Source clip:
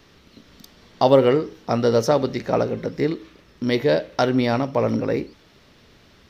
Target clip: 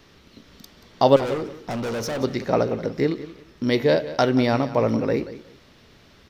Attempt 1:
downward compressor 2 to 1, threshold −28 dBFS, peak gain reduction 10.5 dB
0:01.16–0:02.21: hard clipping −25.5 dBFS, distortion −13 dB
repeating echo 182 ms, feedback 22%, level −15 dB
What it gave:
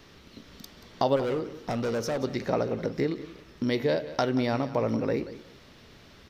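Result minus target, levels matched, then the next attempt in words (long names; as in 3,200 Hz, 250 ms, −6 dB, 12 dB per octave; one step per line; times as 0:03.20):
downward compressor: peak gain reduction +10.5 dB
0:01.16–0:02.21: hard clipping −25.5 dBFS, distortion −6 dB
repeating echo 182 ms, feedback 22%, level −15 dB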